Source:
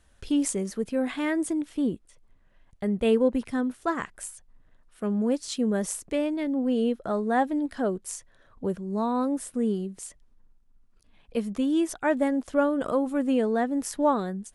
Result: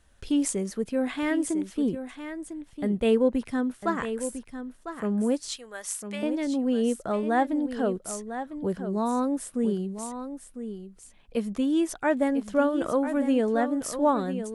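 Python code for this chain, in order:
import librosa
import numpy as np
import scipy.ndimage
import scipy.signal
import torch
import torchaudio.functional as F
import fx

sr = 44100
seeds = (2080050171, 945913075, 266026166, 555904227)

y = fx.highpass(x, sr, hz=1100.0, slope=12, at=(5.56, 6.23))
y = y + 10.0 ** (-10.0 / 20.0) * np.pad(y, (int(1001 * sr / 1000.0), 0))[:len(y)]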